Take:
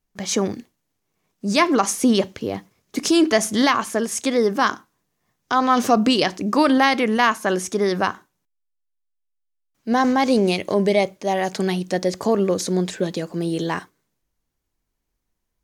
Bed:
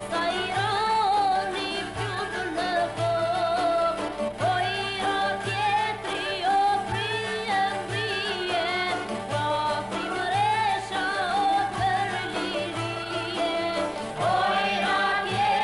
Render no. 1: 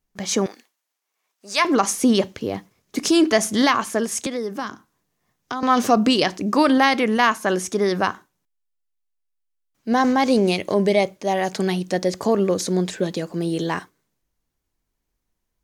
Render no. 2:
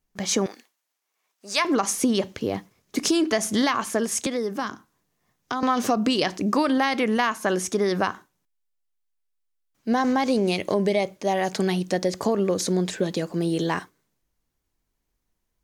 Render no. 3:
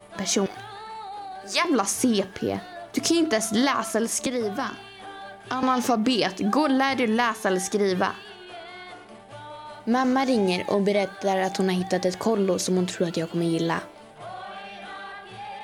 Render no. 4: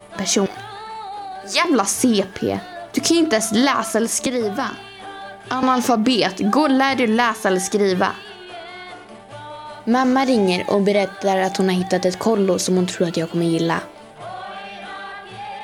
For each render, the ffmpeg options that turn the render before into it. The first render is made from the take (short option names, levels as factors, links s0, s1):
-filter_complex "[0:a]asettb=1/sr,asplit=3[s0][s1][s2];[s0]atrim=end=0.464[s3];[s1]atrim=start=0.46:end=1.65,asetpts=PTS-STARTPTS,afade=t=in:d=0.004:c=qsin,afade=t=out:st=1.186:d=0.004:c=qsin,highpass=800[s4];[s2]atrim=start=1.646[s5];[s3][s4]acrossfade=d=0.004:c1=hsin:c2=qsin[s6];[s6][s5]acrossfade=d=0.004:c1=qsin:c2=hsin,asettb=1/sr,asplit=3[s7][s8][s9];[s7]atrim=end=4.264[s10];[s8]atrim=start=4.26:end=5.63,asetpts=PTS-STARTPTS,afade=t=in:d=0.004:c=qsin,afade=t=out:st=1.366:d=0.004:c=qsin,acrossover=split=280|6100[s11][s12][s13];[s11]acompressor=threshold=0.02:ratio=4[s14];[s12]acompressor=threshold=0.0398:ratio=4[s15];[s13]acompressor=threshold=0.00282:ratio=4[s16];[s14][s15][s16]amix=inputs=3:normalize=0[s17];[s9]atrim=start=5.626[s18];[s10][s17]acrossfade=d=0.004:c1=hsin:c2=qsin[s19];[s19][s18]acrossfade=d=0.004:c1=qsin:c2=hsin"
-af "acompressor=threshold=0.126:ratio=6"
-filter_complex "[1:a]volume=0.188[s0];[0:a][s0]amix=inputs=2:normalize=0"
-af "volume=1.88"